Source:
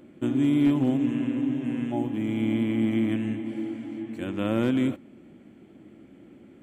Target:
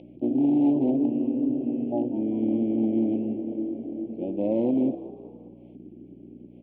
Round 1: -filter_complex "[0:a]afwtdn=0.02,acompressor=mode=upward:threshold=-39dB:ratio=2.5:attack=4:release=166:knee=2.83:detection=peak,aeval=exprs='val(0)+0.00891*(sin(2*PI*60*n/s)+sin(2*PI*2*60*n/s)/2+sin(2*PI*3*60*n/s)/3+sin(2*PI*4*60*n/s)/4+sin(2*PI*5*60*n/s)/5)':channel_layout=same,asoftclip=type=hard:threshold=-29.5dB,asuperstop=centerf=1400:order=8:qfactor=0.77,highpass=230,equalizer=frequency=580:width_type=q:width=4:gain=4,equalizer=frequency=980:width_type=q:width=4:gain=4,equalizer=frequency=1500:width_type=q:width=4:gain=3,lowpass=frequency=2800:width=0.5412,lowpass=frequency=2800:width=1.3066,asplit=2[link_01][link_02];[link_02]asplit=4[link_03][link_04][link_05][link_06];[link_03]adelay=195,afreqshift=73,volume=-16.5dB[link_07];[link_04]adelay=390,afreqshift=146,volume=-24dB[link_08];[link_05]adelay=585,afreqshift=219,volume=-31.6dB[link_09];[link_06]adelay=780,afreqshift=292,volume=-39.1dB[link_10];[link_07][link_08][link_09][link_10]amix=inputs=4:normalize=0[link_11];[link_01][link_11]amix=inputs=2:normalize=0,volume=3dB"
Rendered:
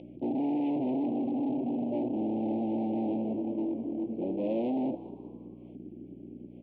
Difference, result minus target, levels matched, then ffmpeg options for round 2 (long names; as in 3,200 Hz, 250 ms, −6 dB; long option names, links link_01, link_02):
hard clipping: distortion +13 dB
-filter_complex "[0:a]afwtdn=0.02,acompressor=mode=upward:threshold=-39dB:ratio=2.5:attack=4:release=166:knee=2.83:detection=peak,aeval=exprs='val(0)+0.00891*(sin(2*PI*60*n/s)+sin(2*PI*2*60*n/s)/2+sin(2*PI*3*60*n/s)/3+sin(2*PI*4*60*n/s)/4+sin(2*PI*5*60*n/s)/5)':channel_layout=same,asoftclip=type=hard:threshold=-18.5dB,asuperstop=centerf=1400:order=8:qfactor=0.77,highpass=230,equalizer=frequency=580:width_type=q:width=4:gain=4,equalizer=frequency=980:width_type=q:width=4:gain=4,equalizer=frequency=1500:width_type=q:width=4:gain=3,lowpass=frequency=2800:width=0.5412,lowpass=frequency=2800:width=1.3066,asplit=2[link_01][link_02];[link_02]asplit=4[link_03][link_04][link_05][link_06];[link_03]adelay=195,afreqshift=73,volume=-16.5dB[link_07];[link_04]adelay=390,afreqshift=146,volume=-24dB[link_08];[link_05]adelay=585,afreqshift=219,volume=-31.6dB[link_09];[link_06]adelay=780,afreqshift=292,volume=-39.1dB[link_10];[link_07][link_08][link_09][link_10]amix=inputs=4:normalize=0[link_11];[link_01][link_11]amix=inputs=2:normalize=0,volume=3dB"